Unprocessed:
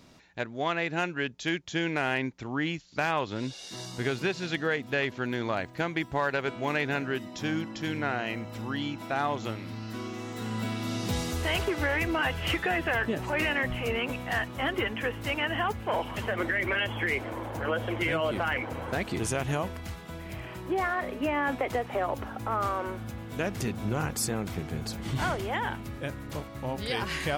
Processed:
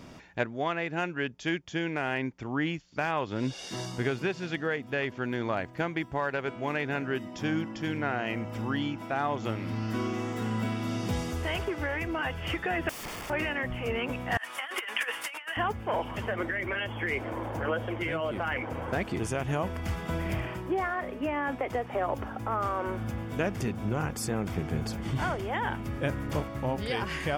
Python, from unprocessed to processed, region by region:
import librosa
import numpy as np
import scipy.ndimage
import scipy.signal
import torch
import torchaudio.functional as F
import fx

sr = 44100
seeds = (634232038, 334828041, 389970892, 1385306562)

y = fx.chain(x, sr, fx.overflow_wrap(gain_db=33.5),
    fx.notch(hz=1500.0, q=12.0), at=(12.89, 13.3))
y = fx.chain(y, sr, fx.highpass(hz=1300.0, slope=12),
    fx.peak_eq(hz=9500.0, db=9.0, octaves=0.44),
    fx.over_compress(threshold_db=-38.0, ratio=-0.5), at=(14.37, 15.57))
y = fx.high_shelf(y, sr, hz=3600.0, db=-7.0)
y = fx.notch(y, sr, hz=4000.0, q=7.2)
y = fx.rider(y, sr, range_db=10, speed_s=0.5)